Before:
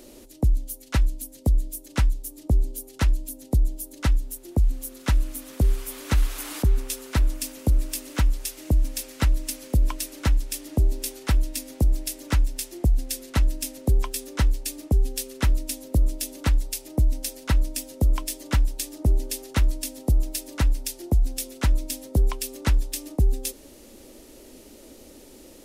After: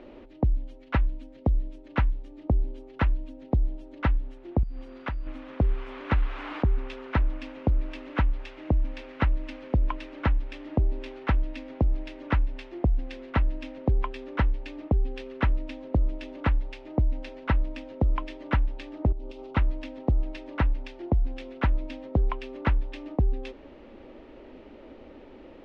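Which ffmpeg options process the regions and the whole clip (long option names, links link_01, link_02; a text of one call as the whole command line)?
ffmpeg -i in.wav -filter_complex "[0:a]asettb=1/sr,asplit=3[link_01][link_02][link_03];[link_01]atrim=end=4.634[link_04];[link_02]atrim=start=4.63:end=5.27,asetpts=PTS-STARTPTS,afade=type=in:duration=0.004:curve=qsin,afade=type=out:start_time=0.636:duration=0.004:curve=qsin,acompressor=threshold=-29dB:ratio=6:attack=3.2:release=140:knee=1:detection=peak,aeval=exprs='val(0)+0.002*sin(2*PI*4700*n/s)':channel_layout=same[link_05];[link_03]atrim=start=5.266[link_06];[link_04][link_05]acrossfade=duration=0.004:curve1=hsin:curve2=qsin[link_07];[link_07][link_06]acrossfade=duration=0.004:curve1=qsin:curve2=hsin,asettb=1/sr,asplit=3[link_08][link_09][link_10];[link_08]atrim=end=19.124[link_11];[link_09]atrim=start=19.12:end=19.57,asetpts=PTS-STARTPTS,afade=type=in:duration=0.004:curve=qsin,afade=type=out:start_time=0.446:duration=0.004:curve=qsin,equalizer=frequency=1900:width_type=o:width=0.75:gain=-8.5,bandreject=frequency=1700:width=5.2,acompressor=threshold=-32dB:ratio=3:attack=3.2:release=140:knee=1:detection=peak[link_12];[link_10]atrim=start=19.566[link_13];[link_11][link_12]acrossfade=duration=0.004:curve1=hsin:curve2=qsin[link_14];[link_14][link_13]acrossfade=duration=0.004:curve1=qsin:curve2=hsin,lowpass=frequency=2800:width=0.5412,lowpass=frequency=2800:width=1.3066,equalizer=frequency=980:width=0.96:gain=5,acompressor=threshold=-19dB:ratio=6" out.wav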